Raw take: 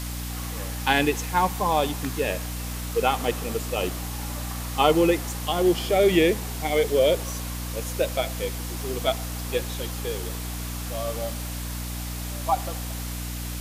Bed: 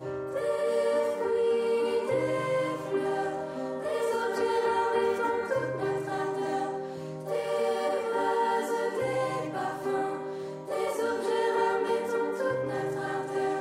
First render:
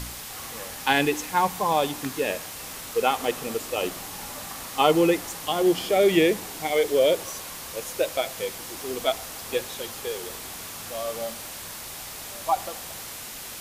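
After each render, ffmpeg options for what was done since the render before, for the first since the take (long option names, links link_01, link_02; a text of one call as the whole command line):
ffmpeg -i in.wav -af "bandreject=frequency=60:width_type=h:width=4,bandreject=frequency=120:width_type=h:width=4,bandreject=frequency=180:width_type=h:width=4,bandreject=frequency=240:width_type=h:width=4,bandreject=frequency=300:width_type=h:width=4" out.wav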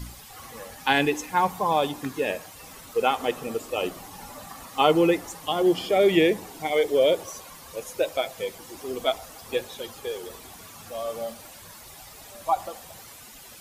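ffmpeg -i in.wav -af "afftdn=noise_reduction=11:noise_floor=-38" out.wav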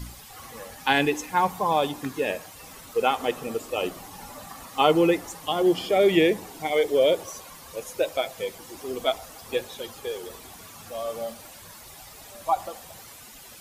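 ffmpeg -i in.wav -af anull out.wav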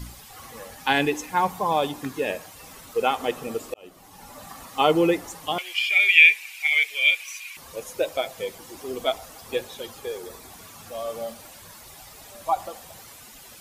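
ffmpeg -i in.wav -filter_complex "[0:a]asettb=1/sr,asplit=3[link_01][link_02][link_03];[link_01]atrim=end=5.584[link_04];[link_02]atrim=start=5.58:end=7.57,asetpts=PTS-STARTPTS,afade=type=in:duration=0.004:curve=qsin,afade=type=out:start_time=1.986:duration=0.004:curve=qsin,highpass=frequency=2400:width_type=q:width=12[link_05];[link_03]atrim=start=7.566[link_06];[link_04][link_05]acrossfade=duration=0.004:curve1=hsin:curve2=qsin[link_07];[link_07][link_06]acrossfade=duration=0.004:curve1=qsin:curve2=hsin,asettb=1/sr,asplit=3[link_08][link_09][link_10];[link_08]atrim=end=10.054[link_11];[link_09]atrim=start=10.05:end=10.51,asetpts=PTS-STARTPTS,afade=type=in:duration=0.004:curve=qsin,afade=type=out:start_time=0.456:duration=0.004:curve=qsin,equalizer=frequency=3000:width_type=o:width=0.21:gain=-9.5[link_12];[link_10]atrim=start=10.506[link_13];[link_11][link_12]acrossfade=duration=0.004:curve1=hsin:curve2=qsin[link_14];[link_14][link_13]acrossfade=duration=0.004:curve1=qsin:curve2=hsin,asplit=2[link_15][link_16];[link_15]atrim=end=3.74,asetpts=PTS-STARTPTS,afade=type=out:start_time=3.736:duration=0.004:curve=hsin[link_17];[link_16]atrim=start=3.74,asetpts=PTS-STARTPTS,afade=type=in:duration=0.75[link_18];[link_17][link_18]concat=n=2:v=0:a=1" out.wav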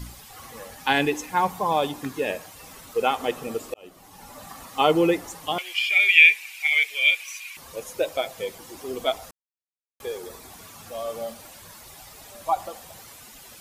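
ffmpeg -i in.wav -filter_complex "[0:a]asplit=3[link_01][link_02][link_03];[link_01]atrim=end=9.31,asetpts=PTS-STARTPTS,afade=type=out:start_time=9.306:duration=0.004:curve=hsin[link_04];[link_02]atrim=start=9.31:end=10,asetpts=PTS-STARTPTS,volume=0[link_05];[link_03]atrim=start=10,asetpts=PTS-STARTPTS,afade=type=in:duration=0.004:curve=hsin[link_06];[link_04][link_05][link_06]concat=n=3:v=0:a=1" out.wav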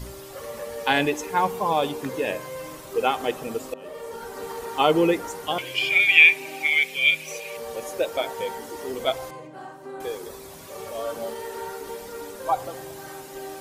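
ffmpeg -i in.wav -i bed.wav -filter_complex "[1:a]volume=-8dB[link_01];[0:a][link_01]amix=inputs=2:normalize=0" out.wav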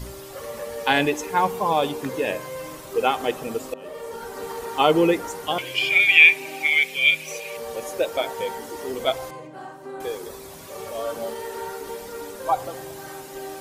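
ffmpeg -i in.wav -af "volume=1.5dB,alimiter=limit=-2dB:level=0:latency=1" out.wav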